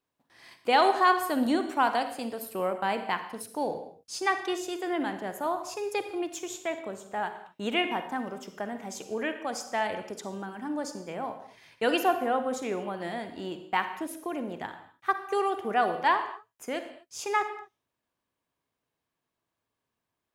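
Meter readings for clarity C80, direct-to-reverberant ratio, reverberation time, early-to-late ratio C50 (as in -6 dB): 11.5 dB, 8.0 dB, not exponential, 9.0 dB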